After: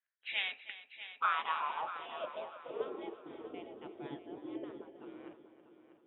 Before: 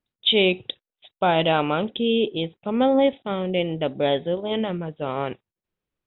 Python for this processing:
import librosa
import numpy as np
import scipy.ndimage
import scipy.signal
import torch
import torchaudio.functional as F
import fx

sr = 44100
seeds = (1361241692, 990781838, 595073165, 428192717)

p1 = fx.spec_gate(x, sr, threshold_db=-15, keep='weak')
p2 = fx.filter_sweep_bandpass(p1, sr, from_hz=1700.0, to_hz=340.0, start_s=0.87, end_s=3.18, q=6.1)
p3 = p2 + fx.echo_heads(p2, sr, ms=321, heads='first and second', feedback_pct=42, wet_db=-14.5, dry=0)
y = p3 * 10.0 ** (8.0 / 20.0)